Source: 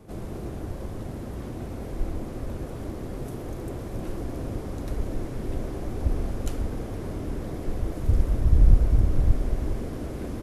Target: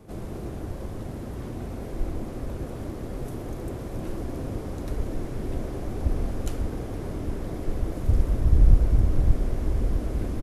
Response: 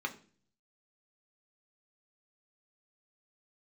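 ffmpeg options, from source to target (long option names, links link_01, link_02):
-filter_complex "[0:a]asplit=2[link_01][link_02];[link_02]adelay=1224,volume=-10dB,highshelf=frequency=4000:gain=-27.6[link_03];[link_01][link_03]amix=inputs=2:normalize=0"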